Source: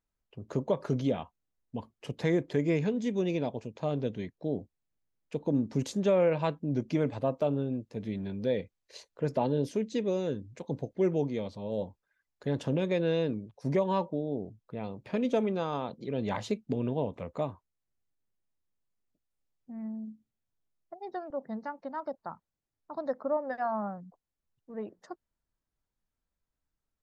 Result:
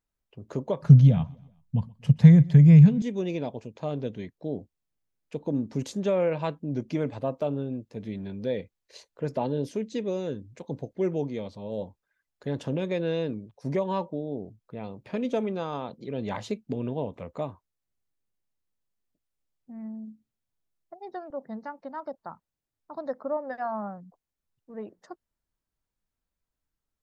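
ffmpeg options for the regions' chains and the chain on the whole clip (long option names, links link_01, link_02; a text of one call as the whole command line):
ffmpeg -i in.wav -filter_complex "[0:a]asettb=1/sr,asplit=3[link_01][link_02][link_03];[link_01]atrim=end=0.824[link_04];[link_02]atrim=start=0.82:end=3.02,asetpts=PTS-STARTPTS,afade=type=in:duration=0.004:curve=qsin,afade=type=out:start_time=2.196:duration=0.004:curve=qsin,lowshelf=frequency=230:width_type=q:width=3:gain=13.5,aecho=1:1:126|252|378:0.0631|0.0309|0.0151,atrim=end_sample=97020[link_05];[link_03]atrim=start=3.016[link_06];[link_04][link_05]acrossfade=duration=0.004:curve1=hsin:curve2=qsin[link_07];[link_07][link_06]acrossfade=duration=0.004:curve1=qsin:curve2=hsin" out.wav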